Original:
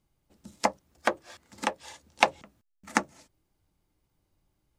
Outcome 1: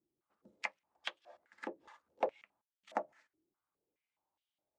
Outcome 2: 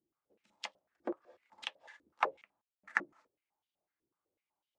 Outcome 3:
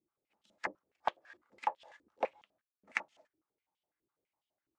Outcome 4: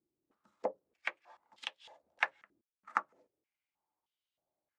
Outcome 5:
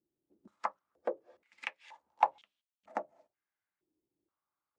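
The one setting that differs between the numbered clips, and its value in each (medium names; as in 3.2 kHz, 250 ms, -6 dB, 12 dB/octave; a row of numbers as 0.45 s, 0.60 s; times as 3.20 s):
step-sequenced band-pass, rate: 4.8 Hz, 8 Hz, 12 Hz, 3.2 Hz, 2.1 Hz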